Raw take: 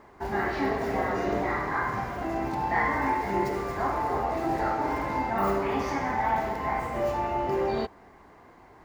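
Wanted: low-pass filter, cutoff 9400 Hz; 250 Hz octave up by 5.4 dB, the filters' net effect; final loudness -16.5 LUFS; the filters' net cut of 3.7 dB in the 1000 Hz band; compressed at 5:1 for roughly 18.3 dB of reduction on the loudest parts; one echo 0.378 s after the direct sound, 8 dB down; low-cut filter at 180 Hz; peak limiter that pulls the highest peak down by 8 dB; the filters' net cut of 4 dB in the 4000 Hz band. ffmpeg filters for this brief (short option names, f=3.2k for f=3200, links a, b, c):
-af "highpass=180,lowpass=9.4k,equalizer=f=250:t=o:g=8.5,equalizer=f=1k:t=o:g=-5,equalizer=f=4k:t=o:g=-5,acompressor=threshold=-42dB:ratio=5,alimiter=level_in=14.5dB:limit=-24dB:level=0:latency=1,volume=-14.5dB,aecho=1:1:378:0.398,volume=30dB"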